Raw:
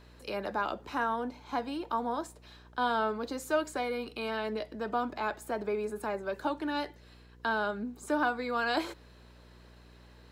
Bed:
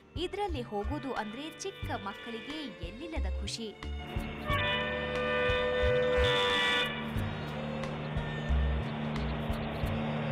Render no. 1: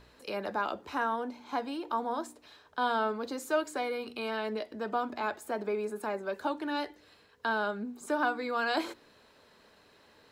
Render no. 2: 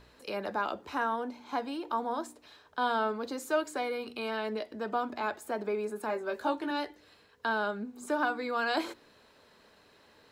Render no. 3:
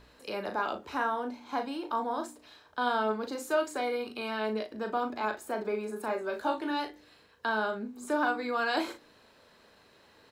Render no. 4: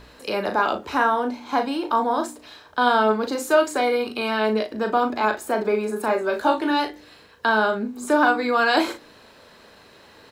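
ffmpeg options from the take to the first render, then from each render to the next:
-af "bandreject=f=60:t=h:w=4,bandreject=f=120:t=h:w=4,bandreject=f=180:t=h:w=4,bandreject=f=240:t=h:w=4,bandreject=f=300:t=h:w=4,bandreject=f=360:t=h:w=4"
-filter_complex "[0:a]asettb=1/sr,asplit=3[s0][s1][s2];[s0]atrim=end=6.074[s3];[s1]atrim=start=6.07:end=6.71,asetpts=PTS-STARTPTS,afade=t=in:d=0.004:c=qsin,afade=t=out:st=0.636:d=0.004:c=qsin,asplit=2[s4][s5];[s5]adelay=18,volume=0.596[s6];[s4][s6]amix=inputs=2:normalize=0,atrim=end_sample=28224[s7];[s2]atrim=start=6.706[s8];[s3][s7]acrossfade=d=0.004:c1=hsin:c2=qsin[s9];[s9][s8]acrossfade=d=0.004:c1=qsin:c2=hsin,asettb=1/sr,asplit=3[s10][s11][s12];[s10]atrim=end=7.794[s13];[s11]atrim=start=7.79:end=8.3,asetpts=PTS-STARTPTS,afade=t=in:d=0.004:c=qsin,afade=t=out:st=0.506:d=0.004:c=qsin,bandreject=f=245.4:t=h:w=4,bandreject=f=490.8:t=h:w=4,bandreject=f=736.2:t=h:w=4,bandreject=f=981.6:t=h:w=4,bandreject=f=1227:t=h:w=4,bandreject=f=1472.4:t=h:w=4,bandreject=f=1717.8:t=h:w=4,bandreject=f=1963.2:t=h:w=4,bandreject=f=2208.6:t=h:w=4,bandreject=f=2454:t=h:w=4,bandreject=f=2699.4:t=h:w=4,bandreject=f=2944.8:t=h:w=4,bandreject=f=3190.2:t=h:w=4,bandreject=f=3435.6:t=h:w=4,bandreject=f=3681:t=h:w=4,bandreject=f=3926.4:t=h:w=4,bandreject=f=4171.8:t=h:w=4,bandreject=f=4417.2:t=h:w=4,bandreject=f=4662.6:t=h:w=4,bandreject=f=4908:t=h:w=4,bandreject=f=5153.4:t=h:w=4,bandreject=f=5398.8:t=h:w=4,bandreject=f=5644.2:t=h:w=4,bandreject=f=5889.6:t=h:w=4,bandreject=f=6135:t=h:w=4,bandreject=f=6380.4:t=h:w=4,bandreject=f=6625.8:t=h:w=4,bandreject=f=6871.2:t=h:w=4,bandreject=f=7116.6:t=h:w=4[s14];[s12]atrim=start=8.296[s15];[s13][s14]acrossfade=d=0.004:c1=hsin:c2=qsin[s16];[s16][s15]acrossfade=d=0.004:c1=qsin:c2=hsin"
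-af "aecho=1:1:37|60:0.447|0.126"
-af "volume=3.35"

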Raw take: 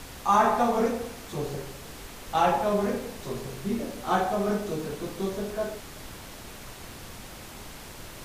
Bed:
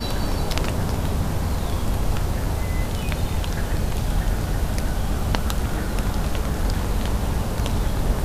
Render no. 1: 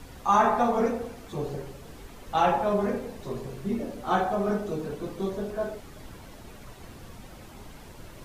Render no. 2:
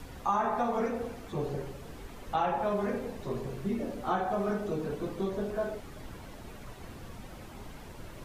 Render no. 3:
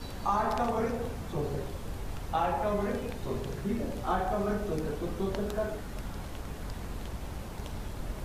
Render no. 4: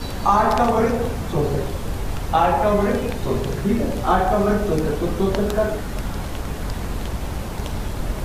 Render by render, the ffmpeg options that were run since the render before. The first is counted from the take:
-af "afftdn=nr=9:nf=-43"
-filter_complex "[0:a]acrossover=split=1300|3100[s0][s1][s2];[s0]acompressor=threshold=0.0398:ratio=4[s3];[s1]acompressor=threshold=0.01:ratio=4[s4];[s2]acompressor=threshold=0.00126:ratio=4[s5];[s3][s4][s5]amix=inputs=3:normalize=0"
-filter_complex "[1:a]volume=0.15[s0];[0:a][s0]amix=inputs=2:normalize=0"
-af "volume=3.98"

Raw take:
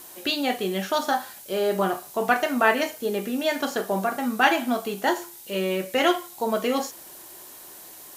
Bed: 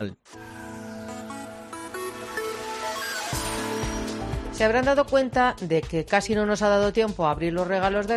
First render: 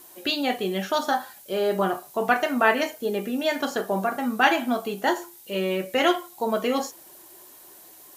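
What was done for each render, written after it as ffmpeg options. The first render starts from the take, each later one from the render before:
-af "afftdn=nr=6:nf=-44"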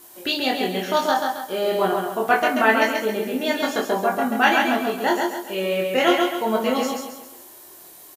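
-filter_complex "[0:a]asplit=2[s0][s1];[s1]adelay=23,volume=0.75[s2];[s0][s2]amix=inputs=2:normalize=0,asplit=2[s3][s4];[s4]aecho=0:1:135|270|405|540|675:0.668|0.274|0.112|0.0461|0.0189[s5];[s3][s5]amix=inputs=2:normalize=0"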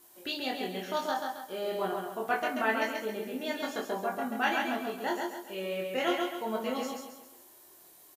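-af "volume=0.266"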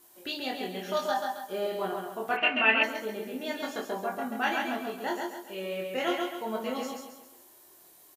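-filter_complex "[0:a]asettb=1/sr,asplit=3[s0][s1][s2];[s0]atrim=end=0.844[s3];[s1]atrim=start=0.84:end=1.67,asetpts=PTS-STARTPTS,afade=t=in:d=0.004:c=qsin,afade=t=out:st=0.826:d=0.004:c=qsin,aecho=1:1:5:0.65,atrim=end_sample=36603[s4];[s2]atrim=start=1.666[s5];[s3][s4]acrossfade=d=0.004:c1=hsin:c2=qsin[s6];[s6][s5]acrossfade=d=0.004:c1=qsin:c2=hsin,asplit=3[s7][s8][s9];[s7]afade=t=out:st=2.36:d=0.02[s10];[s8]lowpass=f=2700:t=q:w=12,afade=t=in:st=2.36:d=0.02,afade=t=out:st=2.82:d=0.02[s11];[s9]afade=t=in:st=2.82:d=0.02[s12];[s10][s11][s12]amix=inputs=3:normalize=0"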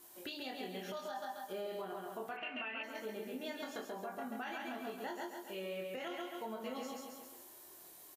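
-af "acompressor=threshold=0.00501:ratio=2,alimiter=level_in=2.82:limit=0.0631:level=0:latency=1:release=86,volume=0.355"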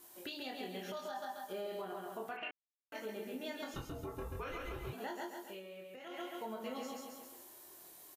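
-filter_complex "[0:a]asettb=1/sr,asplit=3[s0][s1][s2];[s0]atrim=end=3.744[s3];[s1]atrim=start=3.74:end=4.93,asetpts=PTS-STARTPTS,afade=t=in:d=0.004:c=qsin,afade=t=out:st=1.186:d=0.004:c=qsin,afreqshift=-310[s4];[s2]atrim=start=4.926[s5];[s3][s4]acrossfade=d=0.004:c1=hsin:c2=qsin[s6];[s6][s5]acrossfade=d=0.004:c1=qsin:c2=hsin,asplit=5[s7][s8][s9][s10][s11];[s7]atrim=end=2.51,asetpts=PTS-STARTPTS,afade=t=out:st=2.506:d=0.004:c=hsin[s12];[s8]atrim=start=2.51:end=2.92,asetpts=PTS-STARTPTS,volume=0[s13];[s9]atrim=start=2.92:end=5.63,asetpts=PTS-STARTPTS,afade=t=in:d=0.004:c=hsin,afade=t=out:st=2.52:d=0.19:silence=0.375837[s14];[s10]atrim=start=5.63:end=6.04,asetpts=PTS-STARTPTS,volume=0.376[s15];[s11]atrim=start=6.04,asetpts=PTS-STARTPTS,afade=t=in:d=0.19:silence=0.375837[s16];[s12][s13][s14][s15][s16]concat=n=5:v=0:a=1"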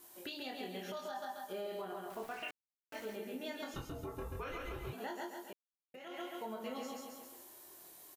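-filter_complex "[0:a]asettb=1/sr,asplit=3[s0][s1][s2];[s0]atrim=end=2.104[s3];[s1]atrim=start=2.1:end=3.16,asetpts=PTS-STARTPTS,afade=t=in:d=0.004:c=qsin,afade=t=out:st=1.056:d=0.004:c=qsin,aeval=exprs='val(0)*gte(abs(val(0)),0.00282)':c=same[s4];[s2]atrim=start=3.156[s5];[s3][s4]acrossfade=d=0.004:c1=hsin:c2=qsin[s6];[s6][s5]acrossfade=d=0.004:c1=qsin:c2=hsin,asplit=3[s7][s8][s9];[s7]atrim=end=5.53,asetpts=PTS-STARTPTS,afade=t=out:st=5.526:d=0.004:c=hsin[s10];[s8]atrim=start=5.53:end=5.94,asetpts=PTS-STARTPTS,volume=0[s11];[s9]atrim=start=5.94,asetpts=PTS-STARTPTS,afade=t=in:d=0.004:c=hsin[s12];[s10][s11][s12]concat=n=3:v=0:a=1"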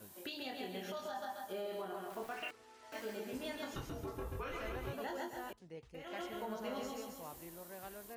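-filter_complex "[1:a]volume=0.0422[s0];[0:a][s0]amix=inputs=2:normalize=0"

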